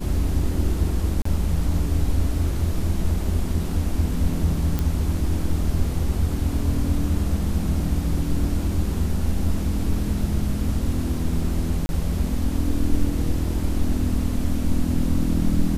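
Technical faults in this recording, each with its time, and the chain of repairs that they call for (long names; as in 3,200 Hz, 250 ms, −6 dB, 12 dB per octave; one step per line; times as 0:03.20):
0:01.22–0:01.25: drop-out 34 ms
0:04.79: click −11 dBFS
0:11.86–0:11.89: drop-out 31 ms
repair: click removal
repair the gap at 0:01.22, 34 ms
repair the gap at 0:11.86, 31 ms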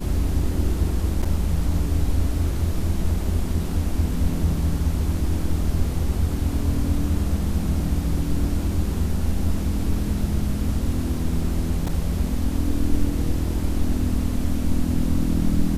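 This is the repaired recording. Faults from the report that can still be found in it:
none of them is left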